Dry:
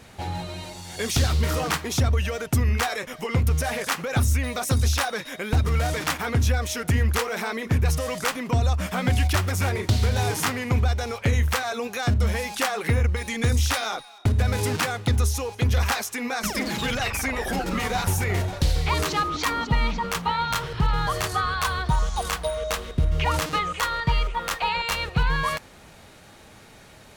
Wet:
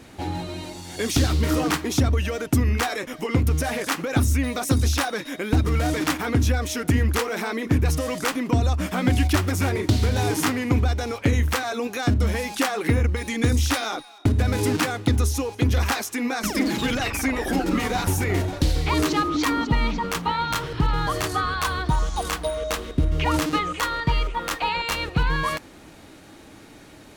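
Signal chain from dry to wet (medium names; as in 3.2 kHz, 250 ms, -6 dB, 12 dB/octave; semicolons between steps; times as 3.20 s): peaking EQ 300 Hz +13.5 dB 0.47 oct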